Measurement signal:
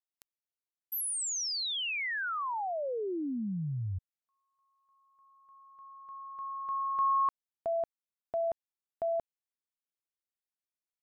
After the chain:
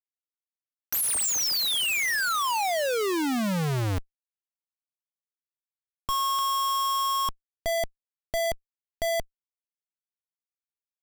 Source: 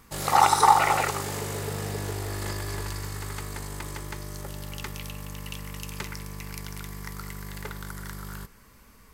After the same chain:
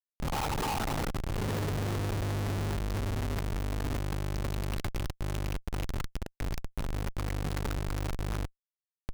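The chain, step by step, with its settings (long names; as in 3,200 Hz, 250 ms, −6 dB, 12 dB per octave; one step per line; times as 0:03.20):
camcorder AGC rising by 18 dB per second, up to +24 dB
comparator with hysteresis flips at −18.5 dBFS
level −8 dB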